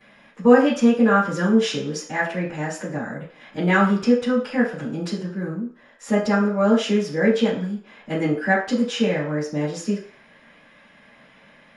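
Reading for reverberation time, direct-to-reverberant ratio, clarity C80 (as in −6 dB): 0.50 s, −12.5 dB, 10.5 dB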